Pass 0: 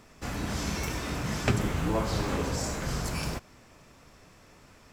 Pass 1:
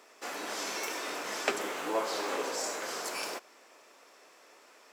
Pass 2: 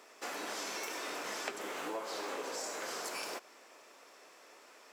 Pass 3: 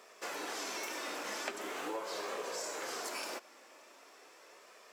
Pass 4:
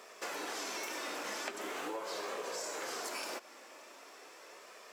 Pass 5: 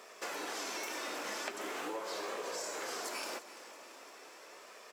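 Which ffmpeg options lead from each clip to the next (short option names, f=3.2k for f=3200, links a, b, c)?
-af "highpass=f=370:w=0.5412,highpass=f=370:w=1.3066"
-af "acompressor=threshold=-37dB:ratio=5"
-af "flanger=delay=1.7:depth=1.9:regen=-54:speed=0.42:shape=sinusoidal,volume=4dB"
-af "acompressor=threshold=-44dB:ratio=2,volume=4dB"
-af "aecho=1:1:339|678|1017|1356|1695|2034:0.168|0.0957|0.0545|0.0311|0.0177|0.0101"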